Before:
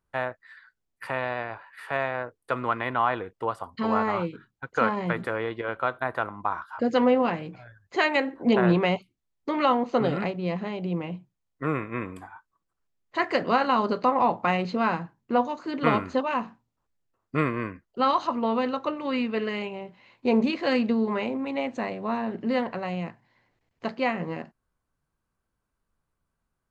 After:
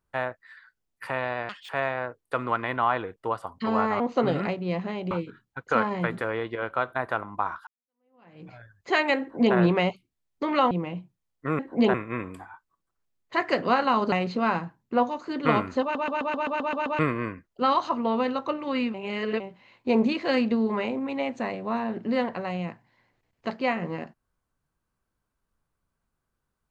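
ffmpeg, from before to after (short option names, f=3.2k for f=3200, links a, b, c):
-filter_complex "[0:a]asplit=21[a][b][c][d][e][f][g][h][i][j][k][l][m][n][o][p][q][r][s][t][u];[a]atrim=end=1.494[v];[b]atrim=start=1.49:end=1.86,asetpts=PTS-STARTPTS,asetrate=81585,aresample=44100[w];[c]atrim=start=1.856:end=4.172[x];[d]atrim=start=9.768:end=10.882[y];[e]atrim=start=4.168:end=6.73,asetpts=PTS-STARTPTS,afade=t=out:st=2.558:d=0.004:c=hsin[z];[f]atrim=start=6.73:end=9.772,asetpts=PTS-STARTPTS,afade=t=in:d=0.8:c=exp[aa];[g]atrim=start=10.878:end=11.762[ab];[h]atrim=start=8.268:end=8.622[ac];[i]atrim=start=11.758:end=13.942[ad];[j]atrim=start=14.498:end=16.332[ae];[k]atrim=start=16.198:end=16.332[af];[l]atrim=start=16.198:end=16.332[ag];[m]atrim=start=16.198:end=16.332[ah];[n]atrim=start=16.198:end=16.332[ai];[o]atrim=start=16.198:end=16.332[aj];[p]atrim=start=16.198:end=16.332[ak];[q]atrim=start=16.198:end=16.332[al];[r]atrim=start=16.198:end=16.332[am];[s]atrim=start=17.368:end=19.322[an];[t]atrim=start=19.318:end=19.782,asetpts=PTS-STARTPTS,areverse[ao];[u]atrim=start=19.778[ap];[v][w]acrossfade=d=0.004:c1=hsin:c2=hsin[aq];[aq][x]acrossfade=d=0.004:c1=hsin:c2=hsin[ar];[ar][y]acrossfade=d=0.004:c1=hsin:c2=hsin[as];[z][aa]concat=n=2:v=0:a=1[at];[as][at]acrossfade=d=0.004:c1=hsin:c2=hsin[au];[au][ab]acrossfade=d=0.004:c1=hsin:c2=hsin[av];[av][ac]acrossfade=d=0.004:c1=hsin:c2=hsin[aw];[aw][ad]acrossfade=d=0.004:c1=hsin:c2=hsin[ax];[ax][ae]acrossfade=d=0.004:c1=hsin:c2=hsin[ay];[ay][af]acrossfade=d=0.004:c1=hsin:c2=hsin[az];[az][ag]acrossfade=d=0.004:c1=hsin:c2=hsin[ba];[ba][ah]acrossfade=d=0.004:c1=hsin:c2=hsin[bb];[bb][ai]acrossfade=d=0.004:c1=hsin:c2=hsin[bc];[bc][aj]acrossfade=d=0.004:c1=hsin:c2=hsin[bd];[bd][ak]acrossfade=d=0.004:c1=hsin:c2=hsin[be];[be][al]acrossfade=d=0.004:c1=hsin:c2=hsin[bf];[bf][am]acrossfade=d=0.004:c1=hsin:c2=hsin[bg];[bg][an]acrossfade=d=0.004:c1=hsin:c2=hsin[bh];[bh][ao]acrossfade=d=0.004:c1=hsin:c2=hsin[bi];[bi][ap]acrossfade=d=0.004:c1=hsin:c2=hsin"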